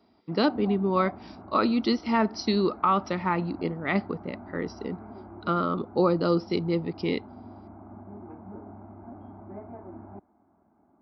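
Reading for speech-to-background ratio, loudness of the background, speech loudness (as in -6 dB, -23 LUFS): 17.5 dB, -44.5 LUFS, -27.0 LUFS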